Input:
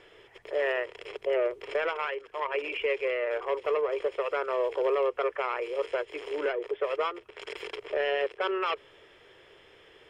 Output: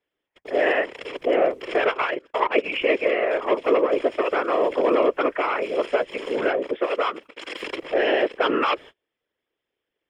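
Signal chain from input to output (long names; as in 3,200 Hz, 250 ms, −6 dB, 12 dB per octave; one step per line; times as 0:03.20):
noise gate −47 dBFS, range −35 dB
0:01.80–0:02.70: transient designer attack +5 dB, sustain −11 dB
0:06.77–0:07.62: low-shelf EQ 300 Hz −11 dB
random phases in short frames
level +7.5 dB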